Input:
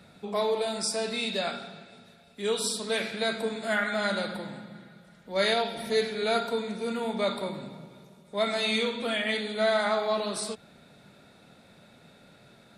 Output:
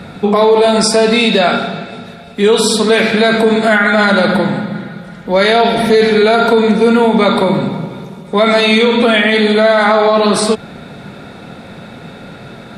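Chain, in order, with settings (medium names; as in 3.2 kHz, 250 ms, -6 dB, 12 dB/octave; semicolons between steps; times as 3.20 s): treble shelf 3.6 kHz -11.5 dB; band-stop 610 Hz, Q 12; loudness maximiser +25.5 dB; trim -1 dB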